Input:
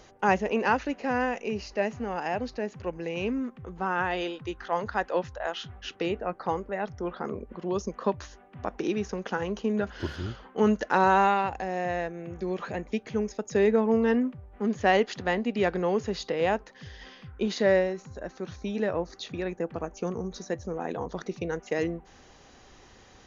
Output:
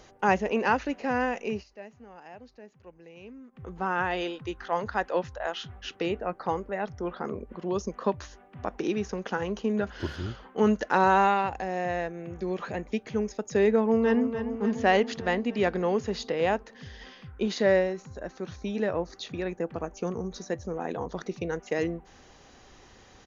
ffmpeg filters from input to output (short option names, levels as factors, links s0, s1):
-filter_complex "[0:a]asplit=2[s0][s1];[s1]afade=t=in:st=13.76:d=0.01,afade=t=out:st=14.26:d=0.01,aecho=0:1:290|580|870|1160|1450|1740|2030|2320|2610|2900:0.334965|0.234476|0.164133|0.114893|0.0804252|0.0562976|0.0394083|0.0275858|0.0193101|0.0135171[s2];[s0][s2]amix=inputs=2:normalize=0,asplit=3[s3][s4][s5];[s3]atrim=end=1.64,asetpts=PTS-STARTPTS,afade=t=out:st=1.52:d=0.12:c=qsin:silence=0.149624[s6];[s4]atrim=start=1.64:end=3.52,asetpts=PTS-STARTPTS,volume=0.15[s7];[s5]atrim=start=3.52,asetpts=PTS-STARTPTS,afade=t=in:d=0.12:c=qsin:silence=0.149624[s8];[s6][s7][s8]concat=n=3:v=0:a=1"